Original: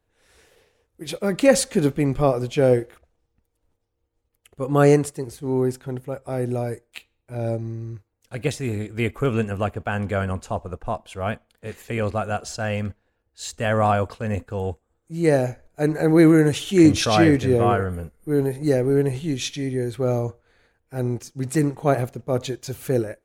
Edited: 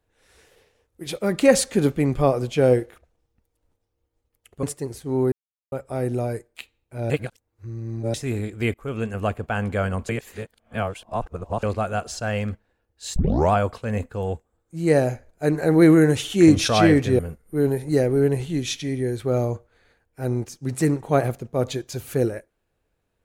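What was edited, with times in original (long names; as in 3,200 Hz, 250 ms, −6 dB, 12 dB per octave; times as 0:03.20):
0:04.63–0:05.00: remove
0:05.69–0:06.09: silence
0:07.47–0:08.51: reverse
0:09.11–0:09.64: fade in, from −16.5 dB
0:10.46–0:12.00: reverse
0:13.53: tape start 0.36 s
0:17.56–0:17.93: remove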